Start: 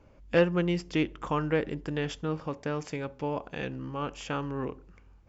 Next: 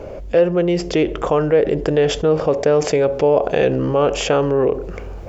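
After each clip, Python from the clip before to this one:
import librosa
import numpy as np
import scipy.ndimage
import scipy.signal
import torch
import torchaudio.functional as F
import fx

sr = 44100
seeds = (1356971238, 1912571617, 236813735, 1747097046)

y = fx.rider(x, sr, range_db=10, speed_s=0.5)
y = fx.band_shelf(y, sr, hz=520.0, db=11.0, octaves=1.2)
y = fx.env_flatten(y, sr, amount_pct=50)
y = y * librosa.db_to_amplitude(3.5)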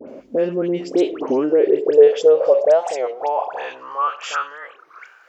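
y = fx.filter_sweep_highpass(x, sr, from_hz=250.0, to_hz=1500.0, start_s=0.82, end_s=4.61, q=5.8)
y = fx.dispersion(y, sr, late='highs', ms=83.0, hz=1700.0)
y = fx.record_warp(y, sr, rpm=33.33, depth_cents=250.0)
y = y * librosa.db_to_amplitude(-8.0)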